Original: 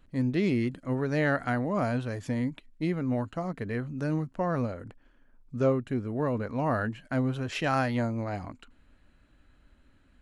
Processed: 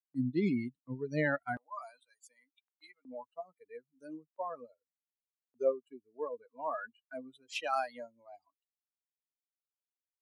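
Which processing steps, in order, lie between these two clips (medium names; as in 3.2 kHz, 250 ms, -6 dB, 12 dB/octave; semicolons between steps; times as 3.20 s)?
expander on every frequency bin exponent 3; gate with hold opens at -56 dBFS; high-pass 140 Hz 24 dB/octave, from 1.57 s 960 Hz, from 3.05 s 380 Hz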